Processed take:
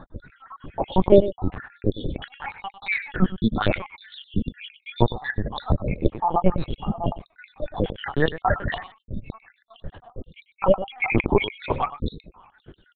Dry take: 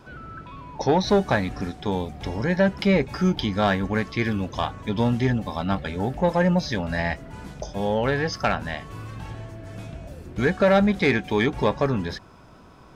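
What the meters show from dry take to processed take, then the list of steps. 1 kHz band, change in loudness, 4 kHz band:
−0.5 dB, −1.0 dB, −3.0 dB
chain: time-frequency cells dropped at random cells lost 80%
low-shelf EQ 67 Hz +9 dB
single-tap delay 106 ms −14 dB
linear-prediction vocoder at 8 kHz pitch kept
level +6 dB

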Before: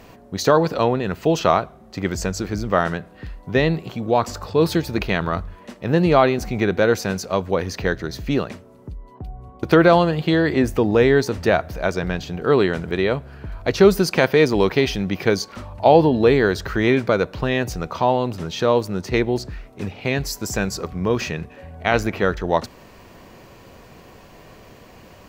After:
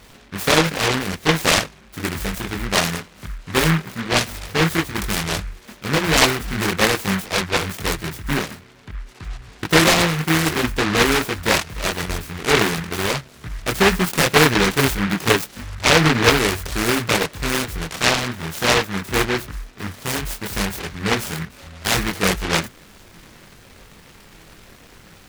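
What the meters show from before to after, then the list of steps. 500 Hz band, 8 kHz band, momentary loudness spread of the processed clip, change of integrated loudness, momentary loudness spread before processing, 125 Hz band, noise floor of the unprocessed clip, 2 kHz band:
−5.0 dB, +10.5 dB, 15 LU, +0.5 dB, 16 LU, 0.0 dB, −46 dBFS, +5.5 dB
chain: multi-voice chorus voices 6, 0.56 Hz, delay 22 ms, depth 3.6 ms
short delay modulated by noise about 1,500 Hz, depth 0.36 ms
level +2 dB

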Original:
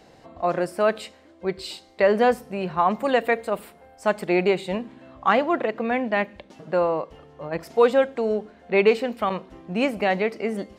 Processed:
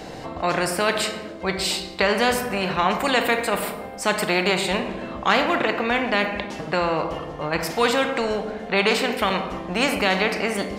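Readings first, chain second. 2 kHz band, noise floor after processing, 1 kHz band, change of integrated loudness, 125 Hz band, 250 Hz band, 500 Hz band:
+6.0 dB, −36 dBFS, +2.0 dB, +1.0 dB, +3.5 dB, +1.0 dB, −2.0 dB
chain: rectangular room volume 280 cubic metres, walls mixed, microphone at 0.43 metres
every bin compressed towards the loudest bin 2 to 1

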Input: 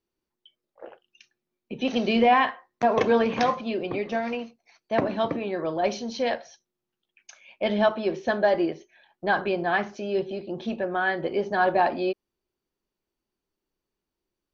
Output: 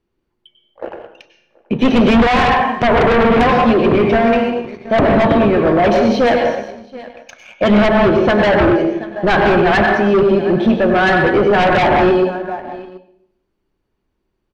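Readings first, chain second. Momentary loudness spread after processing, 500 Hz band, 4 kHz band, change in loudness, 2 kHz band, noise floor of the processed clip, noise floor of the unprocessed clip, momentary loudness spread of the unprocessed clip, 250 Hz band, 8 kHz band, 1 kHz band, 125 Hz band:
13 LU, +12.5 dB, +11.0 dB, +12.5 dB, +12.5 dB, −71 dBFS, below −85 dBFS, 11 LU, +15.0 dB, can't be measured, +11.0 dB, +19.0 dB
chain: pitch vibrato 11 Hz 12 cents
dense smooth reverb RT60 0.78 s, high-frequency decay 0.75×, pre-delay 85 ms, DRR 3.5 dB
treble cut that deepens with the level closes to 1,700 Hz, closed at −13 dBFS
on a send: single-tap delay 729 ms −21 dB
on the sum: leveller curve on the samples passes 1
in parallel at −8 dB: sine wavefolder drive 14 dB, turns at −5 dBFS
on the sum: bass and treble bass +6 dB, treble −13 dB

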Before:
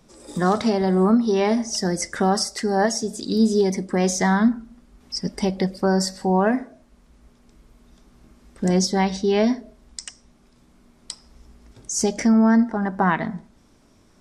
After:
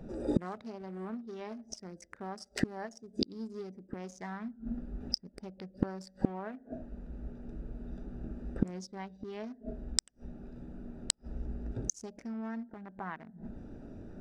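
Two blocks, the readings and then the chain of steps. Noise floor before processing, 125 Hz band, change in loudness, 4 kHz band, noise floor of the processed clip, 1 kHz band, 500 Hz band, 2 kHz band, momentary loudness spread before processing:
−56 dBFS, −14.5 dB, −18.5 dB, −11.5 dB, −64 dBFS, −21.0 dB, −20.0 dB, −19.0 dB, 18 LU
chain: adaptive Wiener filter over 41 samples
parametric band 1,400 Hz +5 dB 2.3 octaves
gate with flip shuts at −23 dBFS, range −34 dB
level +10.5 dB

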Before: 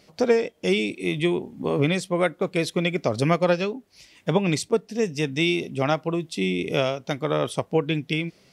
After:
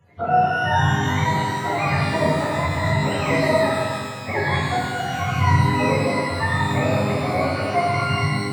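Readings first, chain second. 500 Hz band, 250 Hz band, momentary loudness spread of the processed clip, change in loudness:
0.0 dB, +0.5 dB, 5 LU, +3.5 dB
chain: frequency axis turned over on the octave scale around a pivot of 580 Hz
reverb with rising layers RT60 1.7 s, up +12 semitones, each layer −8 dB, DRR −6 dB
level −3 dB

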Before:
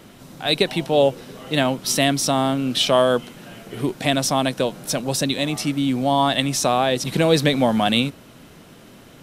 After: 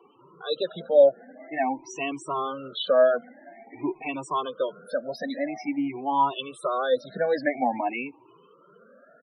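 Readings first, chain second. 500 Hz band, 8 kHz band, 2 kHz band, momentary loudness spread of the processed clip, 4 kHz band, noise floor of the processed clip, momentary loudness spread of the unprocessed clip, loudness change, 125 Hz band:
−3.0 dB, −22.0 dB, −8.0 dB, 13 LU, −15.0 dB, −57 dBFS, 8 LU, −6.0 dB, −22.5 dB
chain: rippled gain that drifts along the octave scale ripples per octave 0.69, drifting +0.49 Hz, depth 16 dB
three-way crossover with the lows and the highs turned down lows −18 dB, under 300 Hz, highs −14 dB, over 2,400 Hz
spectral peaks only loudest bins 32
barber-pole flanger 2.3 ms +2.5 Hz
level −4 dB

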